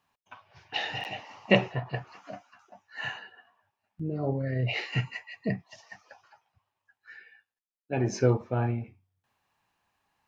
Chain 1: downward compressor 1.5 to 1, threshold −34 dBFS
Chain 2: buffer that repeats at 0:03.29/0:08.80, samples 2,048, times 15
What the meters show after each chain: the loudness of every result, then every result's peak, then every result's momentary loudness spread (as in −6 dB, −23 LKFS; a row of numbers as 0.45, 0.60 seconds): −35.0, −31.0 LKFS; −11.5, −5.0 dBFS; 19, 24 LU